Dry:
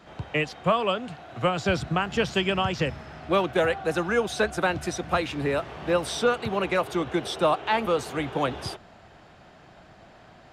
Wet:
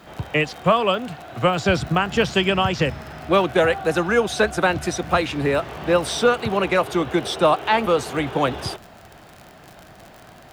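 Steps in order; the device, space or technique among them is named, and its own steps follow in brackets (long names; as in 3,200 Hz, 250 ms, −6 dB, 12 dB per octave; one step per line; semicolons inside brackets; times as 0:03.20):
vinyl LP (surface crackle 54 per second −36 dBFS; white noise bed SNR 44 dB)
level +5.5 dB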